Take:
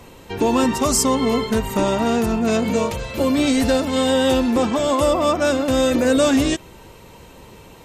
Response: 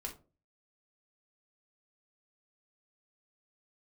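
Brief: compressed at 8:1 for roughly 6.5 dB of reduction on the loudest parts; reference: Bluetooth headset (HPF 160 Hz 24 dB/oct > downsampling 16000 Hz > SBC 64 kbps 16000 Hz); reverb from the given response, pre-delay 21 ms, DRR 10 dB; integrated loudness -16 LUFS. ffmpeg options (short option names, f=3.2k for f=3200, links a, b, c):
-filter_complex "[0:a]acompressor=threshold=-20dB:ratio=8,asplit=2[a][b];[1:a]atrim=start_sample=2205,adelay=21[c];[b][c]afir=irnorm=-1:irlink=0,volume=-8.5dB[d];[a][d]amix=inputs=2:normalize=0,highpass=f=160:w=0.5412,highpass=f=160:w=1.3066,aresample=16000,aresample=44100,volume=8dB" -ar 16000 -c:a sbc -b:a 64k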